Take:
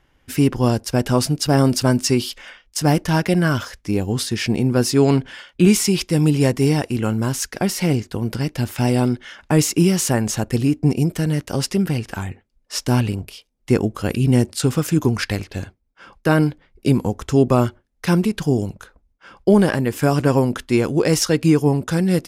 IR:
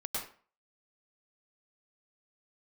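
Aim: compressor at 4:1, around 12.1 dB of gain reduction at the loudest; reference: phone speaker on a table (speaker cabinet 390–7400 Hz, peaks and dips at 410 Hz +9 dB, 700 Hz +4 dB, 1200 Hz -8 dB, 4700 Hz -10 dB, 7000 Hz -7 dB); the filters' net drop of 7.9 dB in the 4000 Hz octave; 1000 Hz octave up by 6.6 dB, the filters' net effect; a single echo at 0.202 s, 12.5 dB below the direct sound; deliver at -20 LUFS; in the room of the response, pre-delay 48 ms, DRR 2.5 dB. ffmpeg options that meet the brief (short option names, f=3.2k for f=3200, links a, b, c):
-filter_complex "[0:a]equalizer=f=1k:t=o:g=8.5,equalizer=f=4k:t=o:g=-6,acompressor=threshold=-24dB:ratio=4,aecho=1:1:202:0.237,asplit=2[a][b];[1:a]atrim=start_sample=2205,adelay=48[c];[b][c]afir=irnorm=-1:irlink=0,volume=-5.5dB[d];[a][d]amix=inputs=2:normalize=0,highpass=f=390:w=0.5412,highpass=f=390:w=1.3066,equalizer=f=410:t=q:w=4:g=9,equalizer=f=700:t=q:w=4:g=4,equalizer=f=1.2k:t=q:w=4:g=-8,equalizer=f=4.7k:t=q:w=4:g=-10,equalizer=f=7k:t=q:w=4:g=-7,lowpass=f=7.4k:w=0.5412,lowpass=f=7.4k:w=1.3066,volume=8dB"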